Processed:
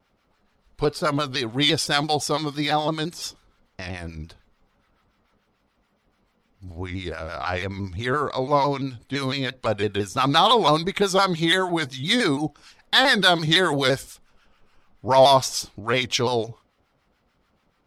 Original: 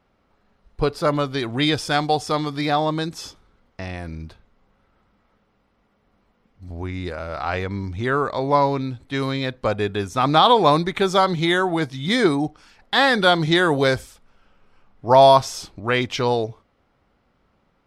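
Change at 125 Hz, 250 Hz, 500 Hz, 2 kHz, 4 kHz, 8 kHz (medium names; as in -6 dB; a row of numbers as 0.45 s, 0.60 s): -3.0 dB, -3.0 dB, -3.0 dB, -0.5 dB, +2.5 dB, +5.0 dB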